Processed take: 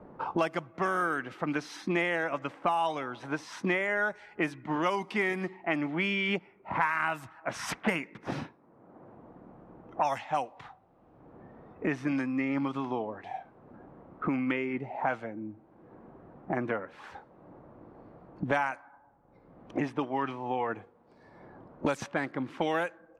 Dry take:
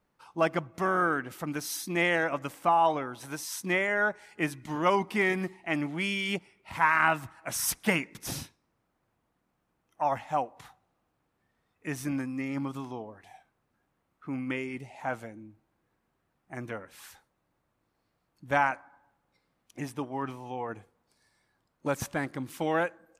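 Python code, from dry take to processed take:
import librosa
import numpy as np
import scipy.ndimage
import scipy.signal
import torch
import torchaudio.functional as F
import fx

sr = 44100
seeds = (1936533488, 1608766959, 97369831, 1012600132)

y = fx.env_lowpass(x, sr, base_hz=670.0, full_db=-22.5)
y = fx.low_shelf(y, sr, hz=140.0, db=-9.5)
y = fx.band_squash(y, sr, depth_pct=100)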